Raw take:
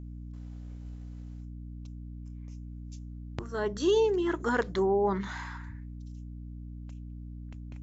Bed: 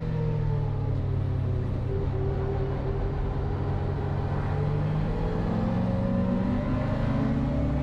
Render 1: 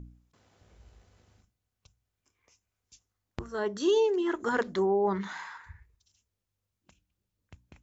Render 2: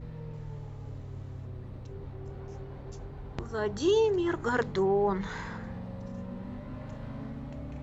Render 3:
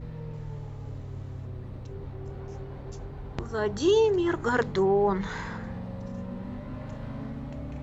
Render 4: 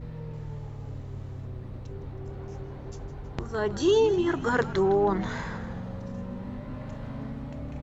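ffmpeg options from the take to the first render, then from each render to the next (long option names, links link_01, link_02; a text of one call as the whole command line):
ffmpeg -i in.wav -af "bandreject=frequency=60:width_type=h:width=4,bandreject=frequency=120:width_type=h:width=4,bandreject=frequency=180:width_type=h:width=4,bandreject=frequency=240:width_type=h:width=4,bandreject=frequency=300:width_type=h:width=4" out.wav
ffmpeg -i in.wav -i bed.wav -filter_complex "[1:a]volume=-14dB[link_01];[0:a][link_01]amix=inputs=2:normalize=0" out.wav
ffmpeg -i in.wav -af "volume=3dB" out.wav
ffmpeg -i in.wav -filter_complex "[0:a]asplit=8[link_01][link_02][link_03][link_04][link_05][link_06][link_07][link_08];[link_02]adelay=160,afreqshift=-82,volume=-15dB[link_09];[link_03]adelay=320,afreqshift=-164,volume=-18.7dB[link_10];[link_04]adelay=480,afreqshift=-246,volume=-22.5dB[link_11];[link_05]adelay=640,afreqshift=-328,volume=-26.2dB[link_12];[link_06]adelay=800,afreqshift=-410,volume=-30dB[link_13];[link_07]adelay=960,afreqshift=-492,volume=-33.7dB[link_14];[link_08]adelay=1120,afreqshift=-574,volume=-37.5dB[link_15];[link_01][link_09][link_10][link_11][link_12][link_13][link_14][link_15]amix=inputs=8:normalize=0" out.wav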